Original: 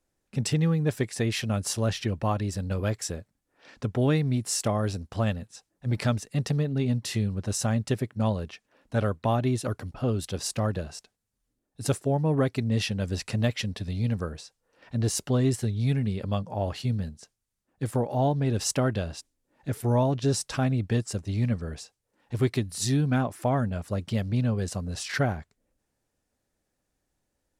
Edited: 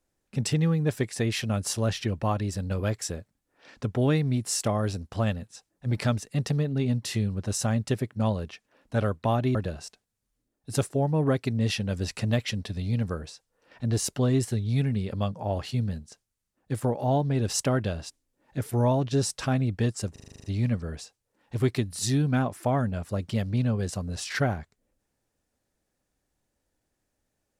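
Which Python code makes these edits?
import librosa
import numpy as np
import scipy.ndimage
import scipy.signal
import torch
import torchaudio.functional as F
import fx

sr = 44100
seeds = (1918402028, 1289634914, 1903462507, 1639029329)

y = fx.edit(x, sr, fx.cut(start_s=9.55, length_s=1.11),
    fx.stutter(start_s=21.23, slice_s=0.04, count=9), tone=tone)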